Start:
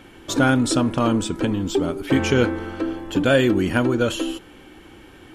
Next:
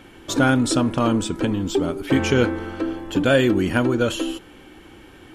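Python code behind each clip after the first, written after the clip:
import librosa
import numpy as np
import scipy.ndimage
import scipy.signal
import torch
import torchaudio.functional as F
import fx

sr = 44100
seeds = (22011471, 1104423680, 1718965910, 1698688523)

y = x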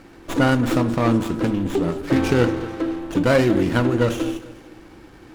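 y = fx.echo_feedback(x, sr, ms=221, feedback_pct=36, wet_db=-17)
y = fx.room_shoebox(y, sr, seeds[0], volume_m3=450.0, walls='furnished', distance_m=0.68)
y = fx.running_max(y, sr, window=9)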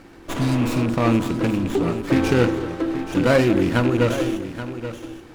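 y = fx.rattle_buzz(x, sr, strikes_db=-19.0, level_db=-22.0)
y = fx.spec_repair(y, sr, seeds[1], start_s=0.38, length_s=0.42, low_hz=270.0, high_hz=3500.0, source='both')
y = y + 10.0 ** (-11.5 / 20.0) * np.pad(y, (int(829 * sr / 1000.0), 0))[:len(y)]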